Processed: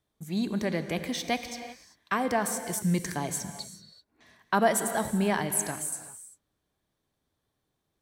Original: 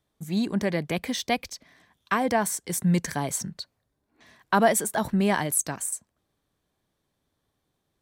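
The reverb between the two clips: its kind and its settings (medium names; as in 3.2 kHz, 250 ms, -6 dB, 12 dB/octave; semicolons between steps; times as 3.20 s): gated-style reverb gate 410 ms flat, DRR 8.5 dB; trim -3.5 dB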